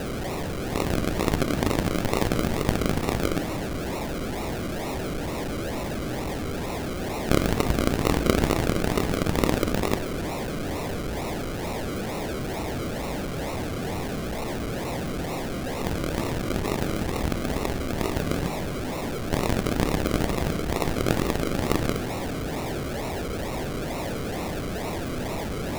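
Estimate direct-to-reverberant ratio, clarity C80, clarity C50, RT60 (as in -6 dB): 10.0 dB, 13.5 dB, 12.0 dB, 1.1 s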